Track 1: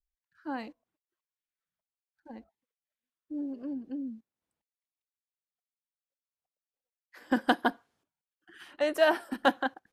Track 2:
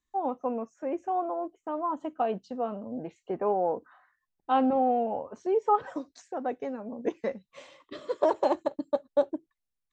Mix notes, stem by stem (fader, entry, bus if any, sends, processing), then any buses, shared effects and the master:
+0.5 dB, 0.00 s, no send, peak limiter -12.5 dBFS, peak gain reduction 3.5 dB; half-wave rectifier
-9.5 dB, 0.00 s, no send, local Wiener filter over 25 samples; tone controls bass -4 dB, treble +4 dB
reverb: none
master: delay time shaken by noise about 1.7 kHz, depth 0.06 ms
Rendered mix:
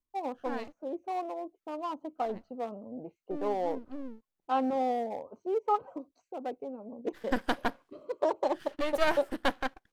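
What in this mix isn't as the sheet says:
stem 2 -9.5 dB -> -3.5 dB; master: missing delay time shaken by noise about 1.7 kHz, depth 0.06 ms

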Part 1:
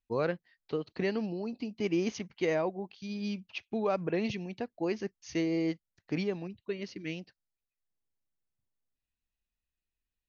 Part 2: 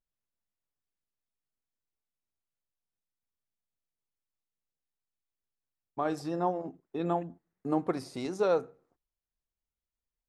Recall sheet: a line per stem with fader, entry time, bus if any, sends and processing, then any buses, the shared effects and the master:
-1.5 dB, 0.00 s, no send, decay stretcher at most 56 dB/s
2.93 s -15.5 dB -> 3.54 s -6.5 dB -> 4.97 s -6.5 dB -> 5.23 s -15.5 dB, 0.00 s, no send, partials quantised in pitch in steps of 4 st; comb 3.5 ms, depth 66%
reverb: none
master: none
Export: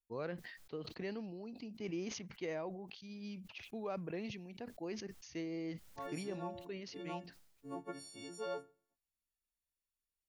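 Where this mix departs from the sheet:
stem 1 -1.5 dB -> -11.5 dB; stem 2: missing comb 3.5 ms, depth 66%

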